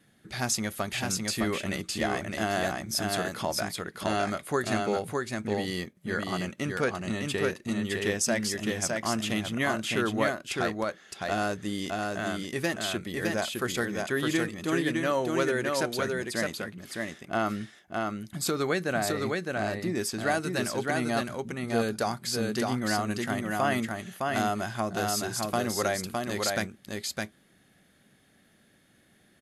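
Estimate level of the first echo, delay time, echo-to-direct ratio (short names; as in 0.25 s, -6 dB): -3.0 dB, 0.611 s, -3.0 dB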